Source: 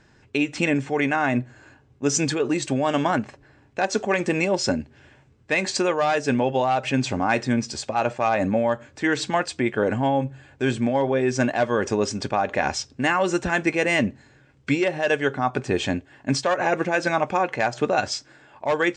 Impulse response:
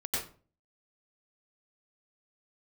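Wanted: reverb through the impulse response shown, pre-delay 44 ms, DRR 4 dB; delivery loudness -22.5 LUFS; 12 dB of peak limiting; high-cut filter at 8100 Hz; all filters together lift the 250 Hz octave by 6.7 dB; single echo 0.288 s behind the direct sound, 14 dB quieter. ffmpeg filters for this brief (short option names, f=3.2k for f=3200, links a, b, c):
-filter_complex "[0:a]lowpass=8.1k,equalizer=f=250:t=o:g=8,alimiter=limit=-17dB:level=0:latency=1,aecho=1:1:288:0.2,asplit=2[a][b];[1:a]atrim=start_sample=2205,adelay=44[c];[b][c]afir=irnorm=-1:irlink=0,volume=-9dB[d];[a][d]amix=inputs=2:normalize=0,volume=2.5dB"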